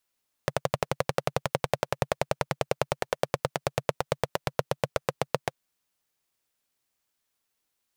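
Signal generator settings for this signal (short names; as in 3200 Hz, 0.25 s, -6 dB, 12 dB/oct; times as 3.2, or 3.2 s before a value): single-cylinder engine model, changing speed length 5.05 s, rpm 1400, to 900, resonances 140/530 Hz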